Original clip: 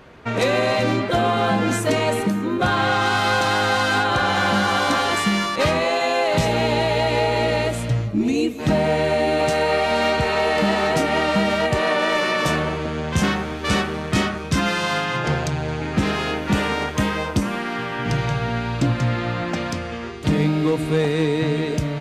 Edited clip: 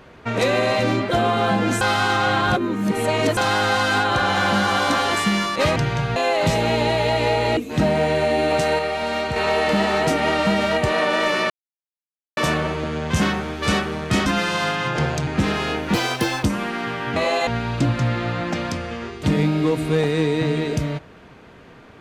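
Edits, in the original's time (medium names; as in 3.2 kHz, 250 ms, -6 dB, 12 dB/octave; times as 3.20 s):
1.81–3.37 s: reverse
5.76–6.07 s: swap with 18.08–18.48 s
7.48–8.46 s: delete
9.68–10.25 s: gain -4.5 dB
12.39 s: insert silence 0.87 s
14.28–14.55 s: delete
15.56–15.86 s: delete
16.53–17.35 s: speed 167%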